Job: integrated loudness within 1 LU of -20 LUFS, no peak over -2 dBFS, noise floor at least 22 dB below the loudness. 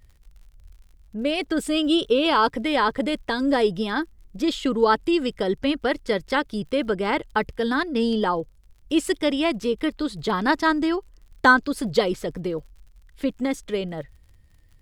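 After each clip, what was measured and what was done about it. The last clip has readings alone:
ticks 46/s; loudness -23.5 LUFS; peak -4.0 dBFS; loudness target -20.0 LUFS
-> de-click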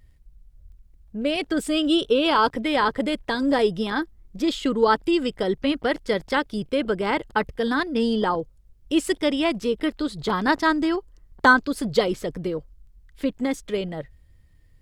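ticks 0.94/s; loudness -23.5 LUFS; peak -4.0 dBFS; loudness target -20.0 LUFS
-> gain +3.5 dB; limiter -2 dBFS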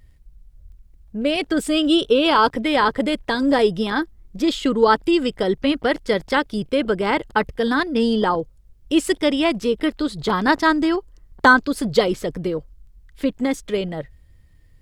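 loudness -20.0 LUFS; peak -2.0 dBFS; noise floor -51 dBFS

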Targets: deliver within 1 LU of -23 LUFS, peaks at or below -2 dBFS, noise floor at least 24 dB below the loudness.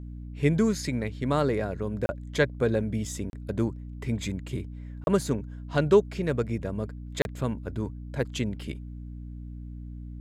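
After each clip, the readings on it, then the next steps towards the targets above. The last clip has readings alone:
dropouts 4; longest dropout 31 ms; hum 60 Hz; harmonics up to 300 Hz; hum level -37 dBFS; loudness -29.0 LUFS; peak -9.5 dBFS; loudness target -23.0 LUFS
-> interpolate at 2.06/3.3/5.04/7.22, 31 ms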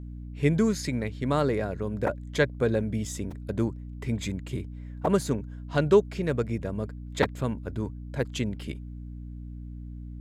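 dropouts 0; hum 60 Hz; harmonics up to 300 Hz; hum level -37 dBFS
-> notches 60/120/180/240/300 Hz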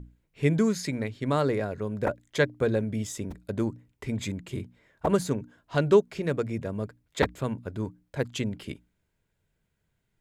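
hum none; loudness -29.0 LUFS; peak -9.0 dBFS; loudness target -23.0 LUFS
-> gain +6 dB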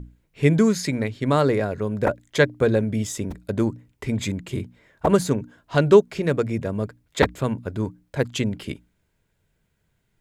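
loudness -23.0 LUFS; peak -3.0 dBFS; noise floor -70 dBFS

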